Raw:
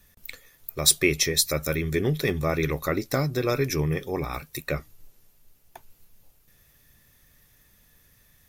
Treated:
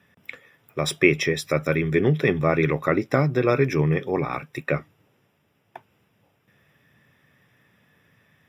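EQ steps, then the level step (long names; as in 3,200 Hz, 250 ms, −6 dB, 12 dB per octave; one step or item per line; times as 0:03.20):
Savitzky-Golay smoothing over 25 samples
high-pass filter 110 Hz 24 dB per octave
+5.0 dB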